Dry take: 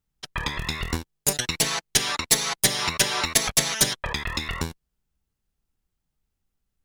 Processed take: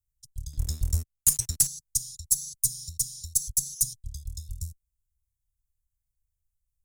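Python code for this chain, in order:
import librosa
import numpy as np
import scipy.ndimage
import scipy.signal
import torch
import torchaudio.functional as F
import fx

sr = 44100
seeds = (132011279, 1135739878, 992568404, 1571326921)

y = scipy.signal.sosfilt(scipy.signal.cheby2(4, 60, [330.0, 2400.0], 'bandstop', fs=sr, output='sos'), x)
y = fx.leveller(y, sr, passes=2, at=(0.53, 1.67))
y = y * librosa.db_to_amplitude(-1.5)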